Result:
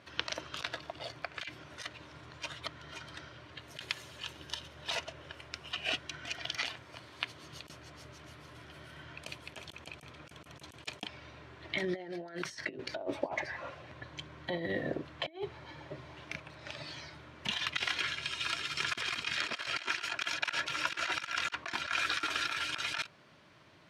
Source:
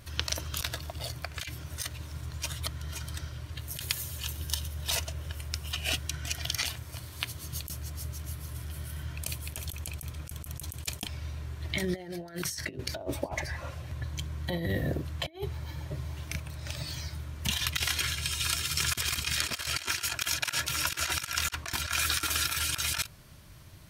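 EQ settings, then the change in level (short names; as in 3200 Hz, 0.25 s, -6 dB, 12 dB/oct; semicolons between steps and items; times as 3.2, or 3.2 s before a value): BPF 270–3200 Hz; 0.0 dB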